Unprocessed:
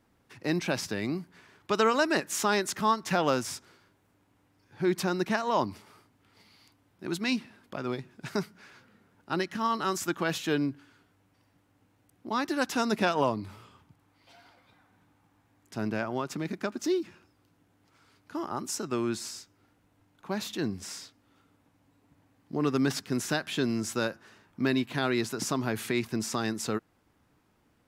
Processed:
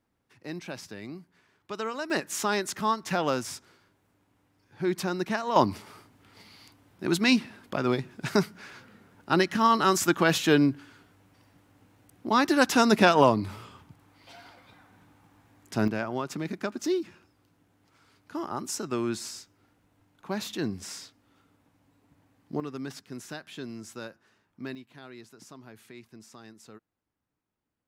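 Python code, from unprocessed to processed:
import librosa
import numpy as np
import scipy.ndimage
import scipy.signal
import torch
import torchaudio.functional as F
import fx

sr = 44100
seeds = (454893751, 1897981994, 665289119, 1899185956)

y = fx.gain(x, sr, db=fx.steps((0.0, -9.0), (2.1, -1.0), (5.56, 7.0), (15.88, 0.5), (22.6, -10.5), (24.75, -18.5)))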